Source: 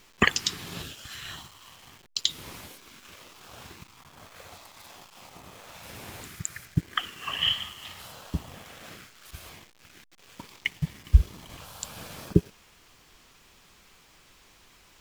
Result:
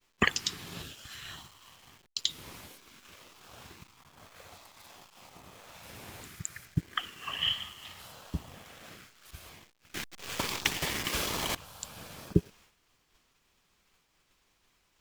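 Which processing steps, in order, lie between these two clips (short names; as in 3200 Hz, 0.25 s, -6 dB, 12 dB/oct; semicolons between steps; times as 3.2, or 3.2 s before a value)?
expander -49 dBFS; 9.94–11.55 spectral compressor 10:1; gain -4.5 dB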